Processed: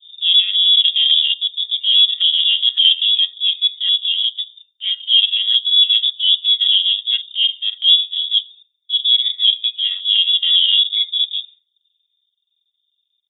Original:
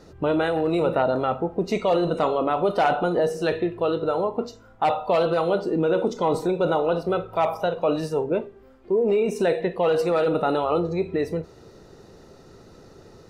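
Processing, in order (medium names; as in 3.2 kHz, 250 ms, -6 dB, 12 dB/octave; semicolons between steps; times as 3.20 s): frequency-domain pitch shifter -9 st; gate with hold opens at -37 dBFS; tilt EQ -4.5 dB/octave; comb 5.4 ms, depth 81%; LFO low-pass saw up 1.8 Hz 490–1800 Hz; transient shaper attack -6 dB, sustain -10 dB; frequency inversion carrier 3.6 kHz; three bands expanded up and down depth 40%; trim -1.5 dB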